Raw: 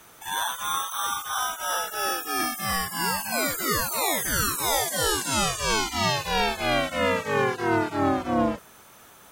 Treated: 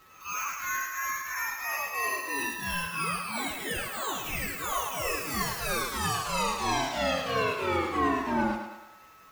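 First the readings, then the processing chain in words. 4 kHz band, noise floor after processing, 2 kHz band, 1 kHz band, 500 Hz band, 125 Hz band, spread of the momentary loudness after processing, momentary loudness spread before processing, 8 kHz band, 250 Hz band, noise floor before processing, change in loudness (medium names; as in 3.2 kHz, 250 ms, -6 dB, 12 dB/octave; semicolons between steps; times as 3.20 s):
-7.5 dB, -53 dBFS, -3.0 dB, -4.0 dB, -6.0 dB, -5.5 dB, 5 LU, 4 LU, -7.5 dB, -5.0 dB, -51 dBFS, -5.0 dB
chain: frequency axis rescaled in octaves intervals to 123%; small resonant body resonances 1.1/2.6 kHz, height 9 dB; pre-echo 159 ms -22 dB; whistle 1.3 kHz -55 dBFS; on a send: thinning echo 107 ms, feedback 52%, high-pass 250 Hz, level -6.5 dB; on the sum: trim -3 dB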